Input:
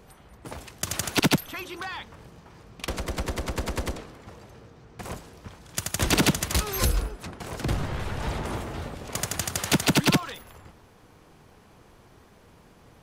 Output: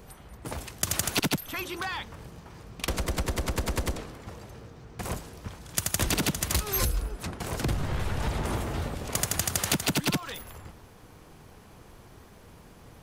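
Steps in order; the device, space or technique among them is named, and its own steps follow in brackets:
ASMR close-microphone chain (low-shelf EQ 120 Hz +4.5 dB; downward compressor 6 to 1, threshold −26 dBFS, peak gain reduction 10 dB; high-shelf EQ 8,500 Hz +6.5 dB)
level +1.5 dB

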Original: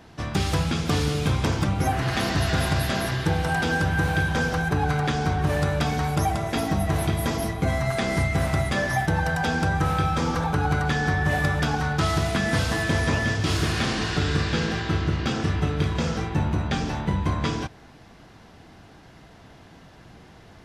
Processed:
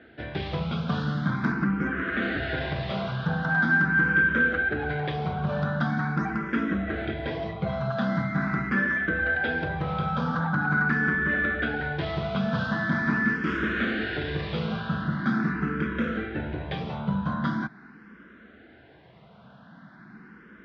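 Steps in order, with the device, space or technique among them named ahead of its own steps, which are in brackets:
0:01.52–0:02.22: high-shelf EQ 3,600 Hz −7.5 dB
barber-pole phaser into a guitar amplifier (frequency shifter mixed with the dry sound +0.43 Hz; soft clipping −17.5 dBFS, distortion −21 dB; loudspeaker in its box 93–3,400 Hz, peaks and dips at 99 Hz −10 dB, 210 Hz +9 dB, 830 Hz −5 dB, 1,500 Hz +10 dB, 2,700 Hz −5 dB)

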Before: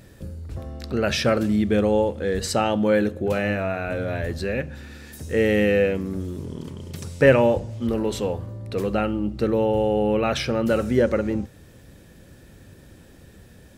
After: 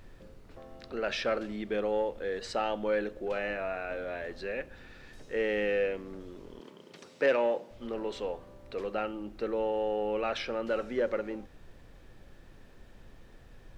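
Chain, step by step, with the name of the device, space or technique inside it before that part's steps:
aircraft cabin announcement (band-pass filter 390–4,000 Hz; soft clipping −10.5 dBFS, distortion −21 dB; brown noise bed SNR 17 dB)
0:06.60–0:07.71: high-pass filter 160 Hz 24 dB per octave
level −7 dB

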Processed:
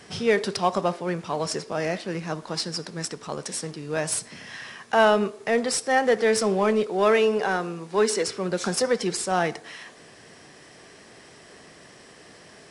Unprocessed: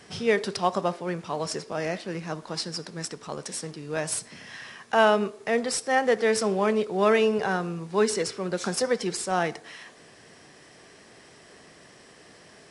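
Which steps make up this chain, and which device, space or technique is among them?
0:06.86–0:08.28: high-pass filter 230 Hz
parallel distortion (in parallel at −8.5 dB: hard clipping −22 dBFS, distortion −8 dB)

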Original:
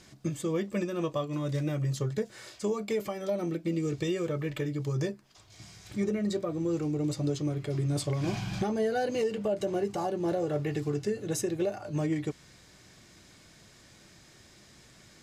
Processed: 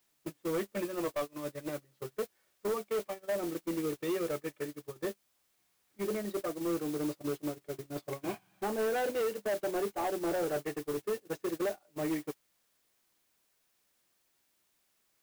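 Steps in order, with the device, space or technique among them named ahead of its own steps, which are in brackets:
aircraft radio (band-pass filter 320–2,400 Hz; hard clipping −30.5 dBFS, distortion −11 dB; white noise bed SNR 12 dB; noise gate −35 dBFS, range −28 dB)
level +2 dB

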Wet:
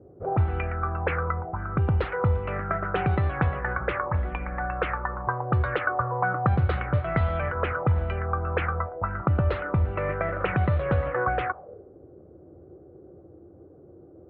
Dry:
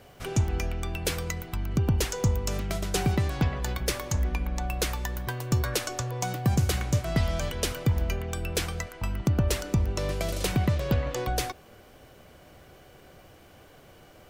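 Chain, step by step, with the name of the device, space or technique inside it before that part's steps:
envelope filter bass rig (envelope-controlled low-pass 310–4,000 Hz up, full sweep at −22 dBFS; loudspeaker in its box 70–2,000 Hz, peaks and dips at 83 Hz +7 dB, 240 Hz −6 dB, 520 Hz +5 dB, 780 Hz +4 dB, 1,300 Hz +9 dB)

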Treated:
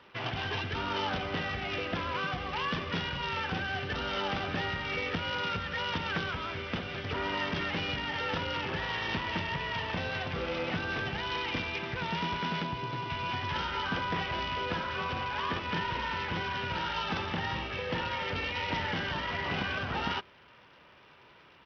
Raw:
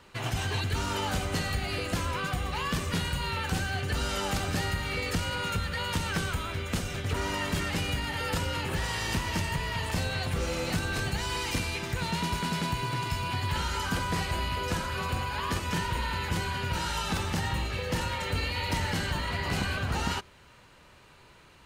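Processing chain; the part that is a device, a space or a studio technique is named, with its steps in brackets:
0:12.63–0:13.10: parametric band 2,000 Hz −5.5 dB 2.1 octaves
Bluetooth headset (high-pass filter 230 Hz 6 dB per octave; downsampling to 8,000 Hz; SBC 64 kbit/s 44,100 Hz)

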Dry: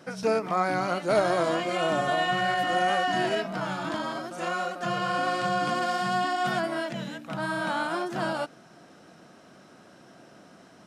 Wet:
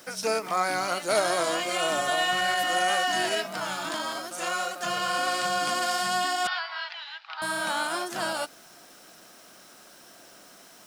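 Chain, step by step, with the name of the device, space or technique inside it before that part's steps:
turntable without a phono preamp (RIAA equalisation recording; white noise bed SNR 29 dB)
0:06.47–0:07.42: Chebyshev band-pass filter 810–4,700 Hz, order 4

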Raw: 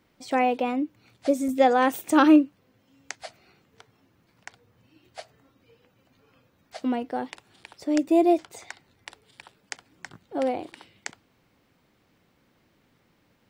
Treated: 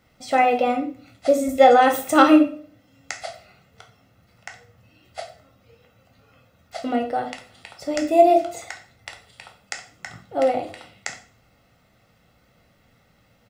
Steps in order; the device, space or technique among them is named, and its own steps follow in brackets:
microphone above a desk (comb filter 1.5 ms, depth 61%; convolution reverb RT60 0.45 s, pre-delay 9 ms, DRR 3 dB)
level +3 dB

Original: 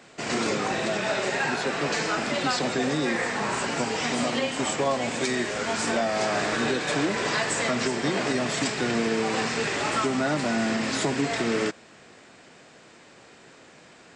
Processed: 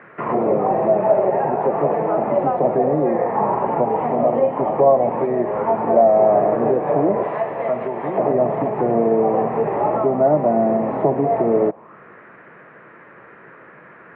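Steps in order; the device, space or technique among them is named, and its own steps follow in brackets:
0:07.23–0:08.18: tilt shelving filter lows −8.5 dB, about 1,300 Hz
envelope filter bass rig (envelope-controlled low-pass 710–1,600 Hz down, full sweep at −22.5 dBFS; loudspeaker in its box 85–2,400 Hz, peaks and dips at 92 Hz −7 dB, 260 Hz −7 dB, 750 Hz −7 dB, 1,500 Hz −9 dB)
level +7.5 dB

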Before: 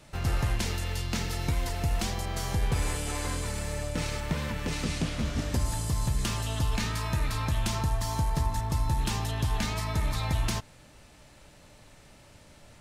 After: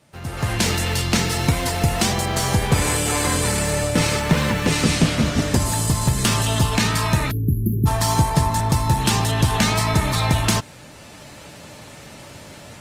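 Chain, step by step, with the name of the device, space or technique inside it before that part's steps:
low-shelf EQ 170 Hz +2 dB
time-frequency box erased 0:07.31–0:07.87, 450–11,000 Hz
dynamic equaliser 8,400 Hz, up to +4 dB, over −54 dBFS, Q 5.1
video call (high-pass filter 110 Hz 12 dB per octave; automatic gain control gain up to 16.5 dB; level −1.5 dB; Opus 24 kbit/s 48,000 Hz)

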